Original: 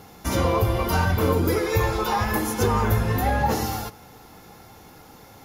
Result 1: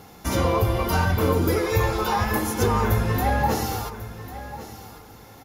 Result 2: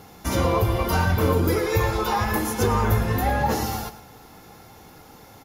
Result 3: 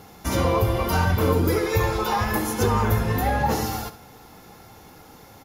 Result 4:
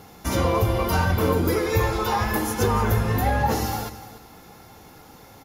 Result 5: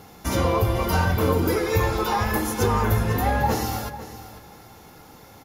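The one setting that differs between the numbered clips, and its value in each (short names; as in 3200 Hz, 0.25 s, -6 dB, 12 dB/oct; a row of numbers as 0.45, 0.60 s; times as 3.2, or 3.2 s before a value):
feedback echo, time: 1096, 114, 68, 293, 500 ms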